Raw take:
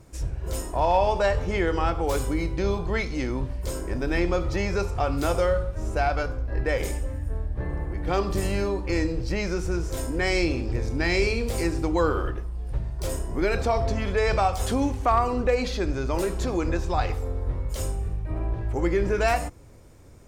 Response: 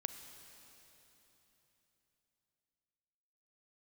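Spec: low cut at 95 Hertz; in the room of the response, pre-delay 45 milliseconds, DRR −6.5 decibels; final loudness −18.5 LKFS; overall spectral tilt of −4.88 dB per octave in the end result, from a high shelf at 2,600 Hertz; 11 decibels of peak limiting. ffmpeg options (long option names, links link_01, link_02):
-filter_complex "[0:a]highpass=95,highshelf=frequency=2600:gain=-8.5,alimiter=limit=-22.5dB:level=0:latency=1,asplit=2[link_01][link_02];[1:a]atrim=start_sample=2205,adelay=45[link_03];[link_02][link_03]afir=irnorm=-1:irlink=0,volume=7.5dB[link_04];[link_01][link_04]amix=inputs=2:normalize=0,volume=6dB"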